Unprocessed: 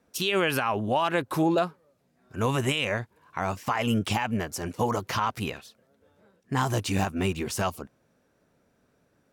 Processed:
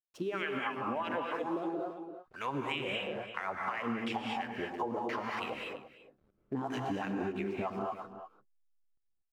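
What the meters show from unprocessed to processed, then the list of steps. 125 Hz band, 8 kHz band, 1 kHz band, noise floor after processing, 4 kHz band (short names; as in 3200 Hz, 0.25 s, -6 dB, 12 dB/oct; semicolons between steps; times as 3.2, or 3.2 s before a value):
-16.0 dB, -23.0 dB, -7.5 dB, -76 dBFS, -10.5 dB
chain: wah 3 Hz 270–2400 Hz, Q 2.2; backlash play -56.5 dBFS; outdoor echo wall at 58 m, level -15 dB; non-linear reverb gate 0.26 s rising, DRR 1 dB; compressor, threshold -35 dBFS, peak gain reduction 10.5 dB; gain +3 dB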